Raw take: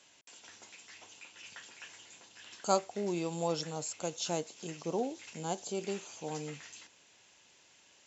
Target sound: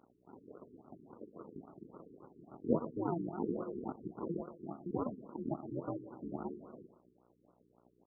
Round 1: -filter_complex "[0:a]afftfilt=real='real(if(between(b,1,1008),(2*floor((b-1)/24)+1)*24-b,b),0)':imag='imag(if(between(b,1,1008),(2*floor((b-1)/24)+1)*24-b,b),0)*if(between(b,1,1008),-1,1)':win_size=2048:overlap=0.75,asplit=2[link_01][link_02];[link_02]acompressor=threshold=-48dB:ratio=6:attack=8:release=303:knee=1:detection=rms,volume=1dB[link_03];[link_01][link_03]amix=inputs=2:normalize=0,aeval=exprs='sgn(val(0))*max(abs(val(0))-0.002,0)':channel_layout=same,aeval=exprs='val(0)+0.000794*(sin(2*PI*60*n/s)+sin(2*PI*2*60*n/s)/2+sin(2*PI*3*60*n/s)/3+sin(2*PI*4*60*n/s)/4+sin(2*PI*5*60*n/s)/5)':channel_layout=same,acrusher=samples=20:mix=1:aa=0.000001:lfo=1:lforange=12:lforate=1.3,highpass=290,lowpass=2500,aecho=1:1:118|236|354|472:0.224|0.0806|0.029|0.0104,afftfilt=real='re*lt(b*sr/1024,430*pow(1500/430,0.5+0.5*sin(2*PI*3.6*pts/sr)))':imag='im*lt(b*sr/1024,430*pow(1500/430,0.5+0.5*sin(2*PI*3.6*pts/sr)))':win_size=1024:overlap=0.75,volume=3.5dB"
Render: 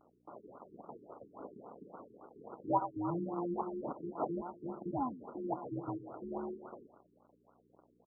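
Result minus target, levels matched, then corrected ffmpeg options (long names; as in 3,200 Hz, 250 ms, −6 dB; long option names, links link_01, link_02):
sample-and-hold swept by an LFO: distortion −9 dB
-filter_complex "[0:a]afftfilt=real='real(if(between(b,1,1008),(2*floor((b-1)/24)+1)*24-b,b),0)':imag='imag(if(between(b,1,1008),(2*floor((b-1)/24)+1)*24-b,b),0)*if(between(b,1,1008),-1,1)':win_size=2048:overlap=0.75,asplit=2[link_01][link_02];[link_02]acompressor=threshold=-48dB:ratio=6:attack=8:release=303:knee=1:detection=rms,volume=1dB[link_03];[link_01][link_03]amix=inputs=2:normalize=0,aeval=exprs='sgn(val(0))*max(abs(val(0))-0.002,0)':channel_layout=same,aeval=exprs='val(0)+0.000794*(sin(2*PI*60*n/s)+sin(2*PI*2*60*n/s)/2+sin(2*PI*3*60*n/s)/3+sin(2*PI*4*60*n/s)/4+sin(2*PI*5*60*n/s)/5)':channel_layout=same,acrusher=samples=70:mix=1:aa=0.000001:lfo=1:lforange=42:lforate=1.3,highpass=290,lowpass=2500,aecho=1:1:118|236|354|472:0.224|0.0806|0.029|0.0104,afftfilt=real='re*lt(b*sr/1024,430*pow(1500/430,0.5+0.5*sin(2*PI*3.6*pts/sr)))':imag='im*lt(b*sr/1024,430*pow(1500/430,0.5+0.5*sin(2*PI*3.6*pts/sr)))':win_size=1024:overlap=0.75,volume=3.5dB"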